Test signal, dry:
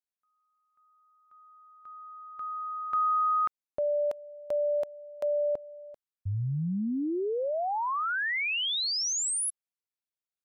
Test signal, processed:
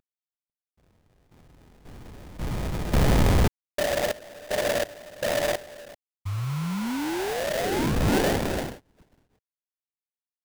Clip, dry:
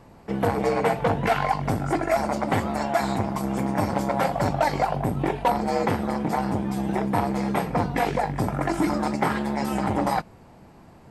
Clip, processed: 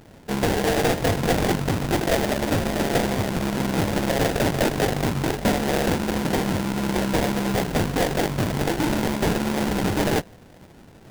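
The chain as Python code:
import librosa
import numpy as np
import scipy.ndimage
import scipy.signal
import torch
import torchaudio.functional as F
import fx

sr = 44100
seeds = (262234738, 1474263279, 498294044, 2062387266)

y = fx.cvsd(x, sr, bps=16000)
y = fx.dynamic_eq(y, sr, hz=1400.0, q=1.1, threshold_db=-42.0, ratio=5.0, max_db=7)
y = fx.wow_flutter(y, sr, seeds[0], rate_hz=2.1, depth_cents=27.0)
y = fx.sample_hold(y, sr, seeds[1], rate_hz=1200.0, jitter_pct=20)
y = np.clip(10.0 ** (18.0 / 20.0) * y, -1.0, 1.0) / 10.0 ** (18.0 / 20.0)
y = y * 10.0 ** (2.0 / 20.0)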